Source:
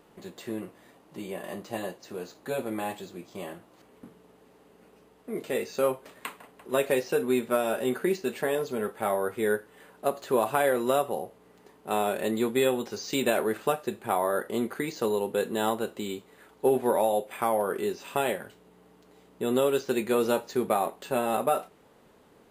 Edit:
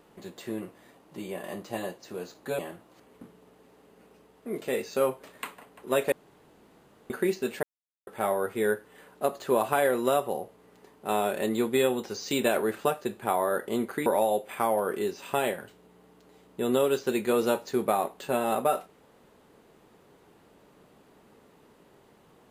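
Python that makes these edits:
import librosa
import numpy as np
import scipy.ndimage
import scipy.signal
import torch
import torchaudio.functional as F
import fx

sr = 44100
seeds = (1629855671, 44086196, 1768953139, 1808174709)

y = fx.edit(x, sr, fx.cut(start_s=2.59, length_s=0.82),
    fx.room_tone_fill(start_s=6.94, length_s=0.98),
    fx.silence(start_s=8.45, length_s=0.44),
    fx.cut(start_s=14.88, length_s=2.0), tone=tone)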